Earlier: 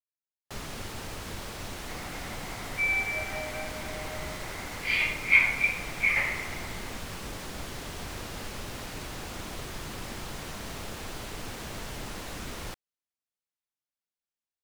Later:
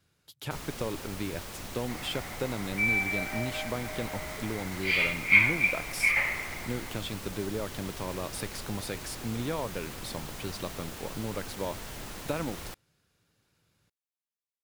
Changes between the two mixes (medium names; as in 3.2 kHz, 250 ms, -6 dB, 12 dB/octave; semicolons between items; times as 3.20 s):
speech: unmuted; first sound -3.5 dB; master: add treble shelf 11 kHz +9 dB